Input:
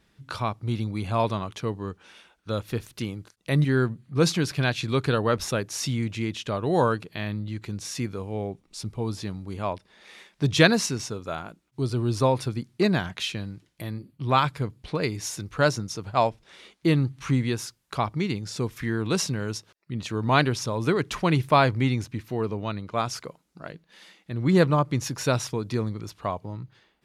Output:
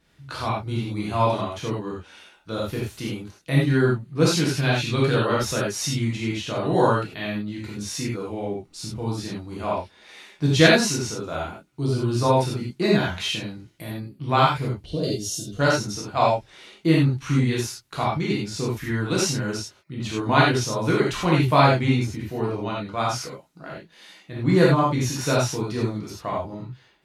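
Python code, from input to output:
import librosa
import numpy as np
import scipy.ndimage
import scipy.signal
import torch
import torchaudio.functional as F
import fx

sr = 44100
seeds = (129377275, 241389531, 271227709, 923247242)

y = fx.rev_gated(x, sr, seeds[0], gate_ms=120, shape='flat', drr_db=-5.5)
y = fx.spec_box(y, sr, start_s=14.86, length_s=0.74, low_hz=750.0, high_hz=2700.0, gain_db=-18)
y = F.gain(torch.from_numpy(y), -3.0).numpy()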